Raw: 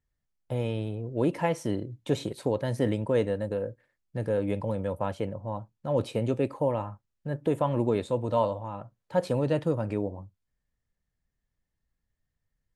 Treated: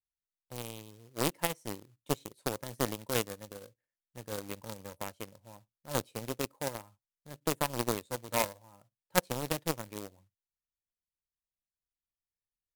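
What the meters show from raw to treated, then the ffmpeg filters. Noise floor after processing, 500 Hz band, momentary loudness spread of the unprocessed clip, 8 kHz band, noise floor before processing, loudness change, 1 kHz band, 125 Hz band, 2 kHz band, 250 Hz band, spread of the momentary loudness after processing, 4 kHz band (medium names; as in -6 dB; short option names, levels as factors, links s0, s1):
under -85 dBFS, -10.0 dB, 10 LU, no reading, -83 dBFS, -6.0 dB, -4.0 dB, -11.5 dB, +2.0 dB, -9.5 dB, 16 LU, +4.5 dB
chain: -af "acrusher=bits=4:mode=log:mix=0:aa=0.000001,aeval=exprs='0.282*(cos(1*acos(clip(val(0)/0.282,-1,1)))-cos(1*PI/2))+0.0891*(cos(3*acos(clip(val(0)/0.282,-1,1)))-cos(3*PI/2))':c=same,aemphasis=mode=production:type=cd,volume=1.33"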